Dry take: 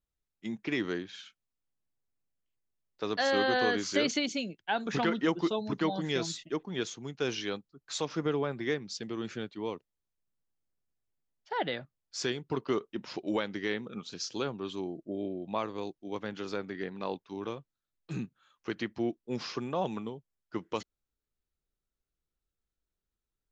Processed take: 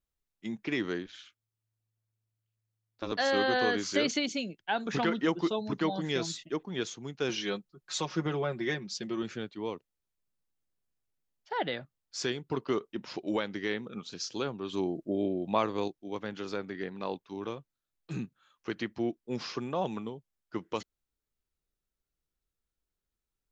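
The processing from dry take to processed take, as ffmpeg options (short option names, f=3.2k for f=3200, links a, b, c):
-filter_complex "[0:a]asettb=1/sr,asplit=3[a][b][c];[a]atrim=end=1.064[d];[b]atrim=start=1.06:end=3.12,asetpts=PTS-STARTPTS,afade=t=in:d=0.004:c=qsin,afade=t=out:st=2.056:d=0.004:c=qsin,aeval=exprs='val(0)*sin(2*PI*110*n/s)':c=same[e];[c]atrim=start=3.116[f];[d][e]acrossfade=d=0.004:c1=hsin:c2=qsin[g];[g][f]acrossfade=d=0.004:c1=qsin:c2=hsin,asettb=1/sr,asplit=3[h][i][j];[h]atrim=end=7.294[k];[i]atrim=start=7.29:end=9.23,asetpts=PTS-STARTPTS,afade=t=in:d=0.004:c=qsin,afade=t=out:st=1.936:d=0.004:c=qsin,aecho=1:1:5.5:0.68,atrim=end_sample=85554[l];[j]atrim=start=9.226[m];[k][l]acrossfade=d=0.004:c1=hsin:c2=qsin[n];[n][m]acrossfade=d=0.004:c1=qsin:c2=hsin,asettb=1/sr,asplit=3[o][p][q];[o]atrim=end=14.734[r];[p]atrim=start=14.73:end=15.88,asetpts=PTS-STARTPTS,afade=t=in:d=0.004:c=qsin,afade=t=out:st=1.146:d=0.004:c=qsin,acontrast=32[s];[q]atrim=start=15.876[t];[r][s]acrossfade=d=0.004:c1=hsin:c2=qsin[u];[u][t]acrossfade=d=0.004:c1=qsin:c2=hsin"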